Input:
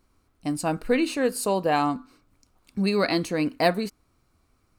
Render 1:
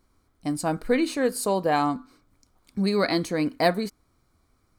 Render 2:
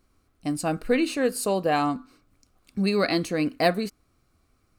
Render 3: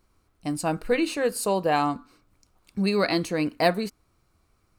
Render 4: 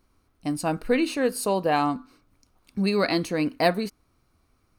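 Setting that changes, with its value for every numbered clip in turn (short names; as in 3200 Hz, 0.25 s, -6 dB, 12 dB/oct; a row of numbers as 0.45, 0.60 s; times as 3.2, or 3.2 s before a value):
notch, frequency: 2700, 930, 260, 7500 Hz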